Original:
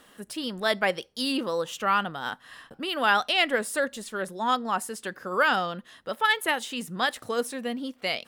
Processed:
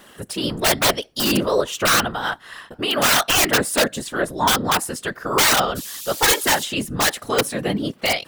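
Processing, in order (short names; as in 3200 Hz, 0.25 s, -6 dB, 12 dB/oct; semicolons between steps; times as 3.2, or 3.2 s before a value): wrapped overs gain 18 dB; 5.75–6.63 band noise 3000–16000 Hz -42 dBFS; whisperiser; gain +8.5 dB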